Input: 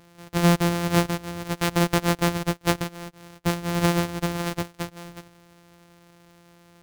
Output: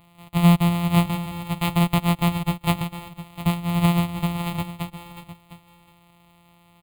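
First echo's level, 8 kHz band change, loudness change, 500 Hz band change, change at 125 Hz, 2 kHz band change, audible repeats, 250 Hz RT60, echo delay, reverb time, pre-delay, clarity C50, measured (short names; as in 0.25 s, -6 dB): -14.0 dB, -5.0 dB, +2.5 dB, -5.5 dB, +4.5 dB, -2.5 dB, 1, none, 0.706 s, none, none, none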